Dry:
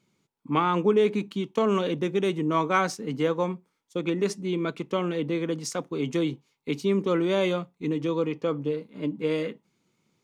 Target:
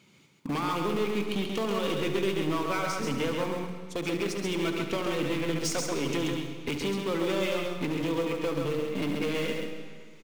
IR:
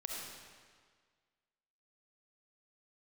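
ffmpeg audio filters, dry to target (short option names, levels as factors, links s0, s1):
-filter_complex "[0:a]highpass=52,equalizer=f=2700:w=1.4:g=6.5,bandreject=f=60:t=h:w=6,bandreject=f=120:t=h:w=6,bandreject=f=180:t=h:w=6,bandreject=f=240:t=h:w=6,bandreject=f=300:t=h:w=6,bandreject=f=360:t=h:w=6,bandreject=f=420:t=h:w=6,bandreject=f=480:t=h:w=6,acompressor=threshold=0.0158:ratio=16,asplit=2[s0][s1];[s1]acrusher=bits=4:dc=4:mix=0:aa=0.000001,volume=0.316[s2];[s0][s2]amix=inputs=2:normalize=0,asoftclip=type=hard:threshold=0.0168,aecho=1:1:134:0.596,asplit=2[s3][s4];[1:a]atrim=start_sample=2205,adelay=72[s5];[s4][s5]afir=irnorm=-1:irlink=0,volume=0.473[s6];[s3][s6]amix=inputs=2:normalize=0,volume=2.82"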